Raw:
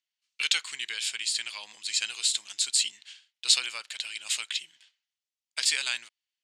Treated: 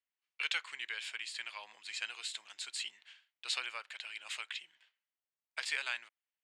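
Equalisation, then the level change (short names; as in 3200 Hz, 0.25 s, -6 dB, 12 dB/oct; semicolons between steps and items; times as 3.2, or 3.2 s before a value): three-band isolator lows -15 dB, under 410 Hz, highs -18 dB, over 2400 Hz; low shelf 220 Hz +3.5 dB; -1.0 dB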